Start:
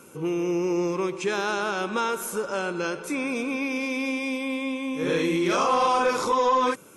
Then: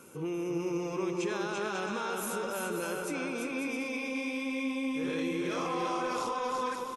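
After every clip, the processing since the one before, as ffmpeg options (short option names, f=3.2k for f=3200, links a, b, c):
-af "alimiter=level_in=0.5dB:limit=-24dB:level=0:latency=1:release=38,volume=-0.5dB,aecho=1:1:340|544|666.4|739.8|783.9:0.631|0.398|0.251|0.158|0.1,volume=-4dB"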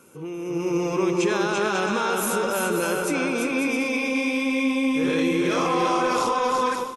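-af "dynaudnorm=f=400:g=3:m=10.5dB"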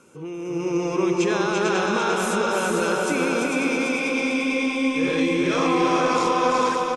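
-filter_complex "[0:a]lowpass=f=8.7k:w=0.5412,lowpass=f=8.7k:w=1.3066,asplit=2[a][b];[b]aecho=0:1:448|896|1344|1792|2240|2688:0.631|0.303|0.145|0.0698|0.0335|0.0161[c];[a][c]amix=inputs=2:normalize=0"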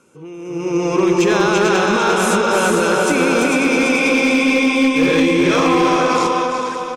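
-af "alimiter=limit=-14dB:level=0:latency=1:release=202,dynaudnorm=f=120:g=13:m=11.5dB,asoftclip=type=hard:threshold=-7.5dB,volume=-1dB"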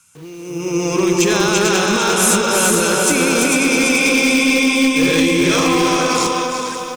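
-filter_complex "[0:a]lowshelf=f=250:g=7,acrossover=split=150|920[a][b][c];[b]acrusher=bits=6:mix=0:aa=0.000001[d];[c]crystalizer=i=4:c=0[e];[a][d][e]amix=inputs=3:normalize=0,volume=-3.5dB"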